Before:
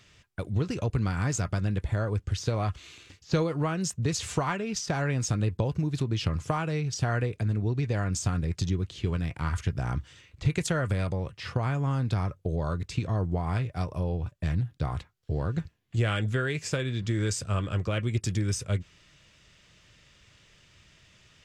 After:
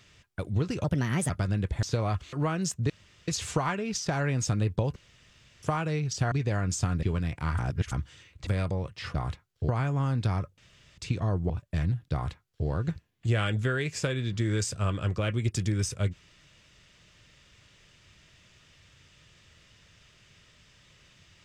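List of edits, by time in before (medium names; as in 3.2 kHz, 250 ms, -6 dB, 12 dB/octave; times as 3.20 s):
0.84–1.43 s: speed 129%
1.96–2.37 s: delete
2.87–3.52 s: delete
4.09 s: insert room tone 0.38 s
5.77–6.44 s: room tone
7.13–7.75 s: delete
8.46–9.01 s: delete
9.57–9.90 s: reverse
10.45–10.88 s: delete
12.45–12.85 s: room tone
13.37–14.19 s: delete
14.82–15.36 s: copy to 11.56 s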